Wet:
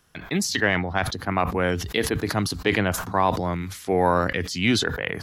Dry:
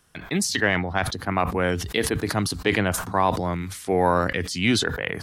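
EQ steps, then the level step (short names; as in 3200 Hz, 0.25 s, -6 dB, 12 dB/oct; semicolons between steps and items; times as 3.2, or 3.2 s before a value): bell 8800 Hz -10 dB 0.2 oct; 0.0 dB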